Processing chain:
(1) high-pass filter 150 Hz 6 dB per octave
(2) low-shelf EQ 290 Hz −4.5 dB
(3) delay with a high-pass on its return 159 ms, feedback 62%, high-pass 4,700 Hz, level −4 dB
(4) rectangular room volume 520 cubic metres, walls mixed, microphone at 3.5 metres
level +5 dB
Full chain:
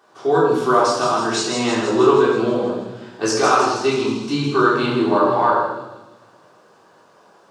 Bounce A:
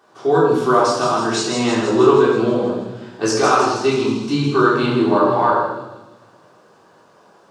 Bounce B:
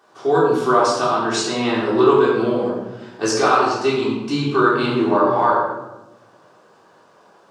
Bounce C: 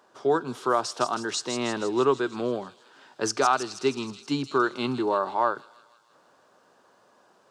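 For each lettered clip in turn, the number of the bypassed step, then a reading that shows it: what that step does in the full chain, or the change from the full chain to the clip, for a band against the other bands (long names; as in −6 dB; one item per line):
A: 2, 125 Hz band +3.5 dB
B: 3, 8 kHz band −2.0 dB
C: 4, echo-to-direct ratio 8.0 dB to −18.0 dB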